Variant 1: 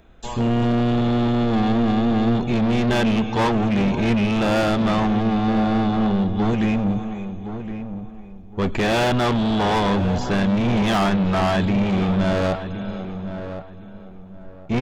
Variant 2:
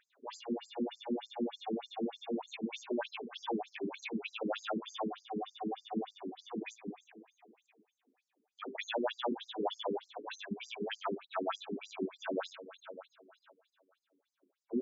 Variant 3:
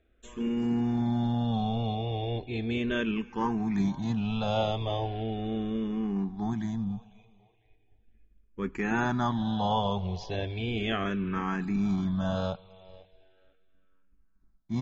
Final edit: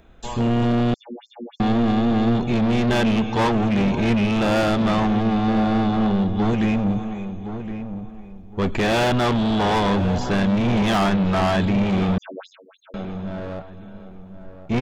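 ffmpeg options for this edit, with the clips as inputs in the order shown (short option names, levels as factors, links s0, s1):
-filter_complex "[1:a]asplit=2[s0][s1];[0:a]asplit=3[s2][s3][s4];[s2]atrim=end=0.942[s5];[s0]atrim=start=0.938:end=1.602[s6];[s3]atrim=start=1.598:end=12.182[s7];[s1]atrim=start=12.178:end=12.942[s8];[s4]atrim=start=12.938[s9];[s5][s6]acrossfade=d=0.004:c1=hsin:c2=hsin[s10];[s10][s7]acrossfade=d=0.004:c1=hsin:c2=hsin[s11];[s11][s8]acrossfade=d=0.004:c1=hsin:c2=hsin[s12];[s12][s9]acrossfade=d=0.004:c1=hsin:c2=hsin"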